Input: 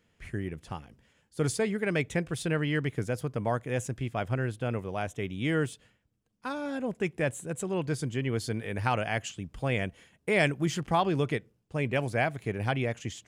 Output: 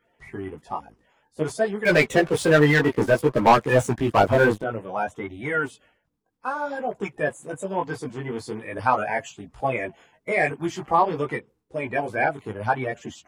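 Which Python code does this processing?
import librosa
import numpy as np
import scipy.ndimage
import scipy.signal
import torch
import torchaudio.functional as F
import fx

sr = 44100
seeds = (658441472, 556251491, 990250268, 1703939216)

y = fx.spec_quant(x, sr, step_db=30)
y = fx.peak_eq(y, sr, hz=880.0, db=14.5, octaves=1.7)
y = fx.leveller(y, sr, passes=3, at=(1.85, 4.62))
y = fx.chorus_voices(y, sr, voices=2, hz=0.57, base_ms=17, depth_ms=3.8, mix_pct=45)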